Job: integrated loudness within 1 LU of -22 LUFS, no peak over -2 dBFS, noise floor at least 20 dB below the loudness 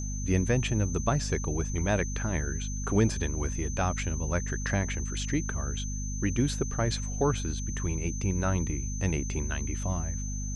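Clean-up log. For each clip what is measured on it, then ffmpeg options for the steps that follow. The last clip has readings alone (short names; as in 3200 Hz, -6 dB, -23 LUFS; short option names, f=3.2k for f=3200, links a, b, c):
hum 50 Hz; harmonics up to 250 Hz; hum level -32 dBFS; steady tone 6200 Hz; tone level -39 dBFS; loudness -30.0 LUFS; peak -10.5 dBFS; loudness target -22.0 LUFS
-> -af "bandreject=f=50:t=h:w=6,bandreject=f=100:t=h:w=6,bandreject=f=150:t=h:w=6,bandreject=f=200:t=h:w=6,bandreject=f=250:t=h:w=6"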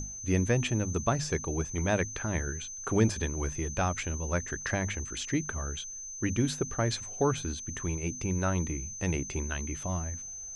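hum none; steady tone 6200 Hz; tone level -39 dBFS
-> -af "bandreject=f=6.2k:w=30"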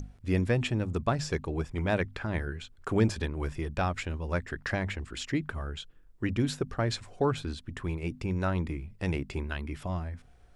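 steady tone none; loudness -32.0 LUFS; peak -13.0 dBFS; loudness target -22.0 LUFS
-> -af "volume=10dB"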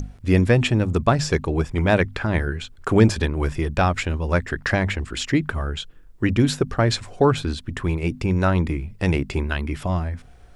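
loudness -22.0 LUFS; peak -3.0 dBFS; noise floor -46 dBFS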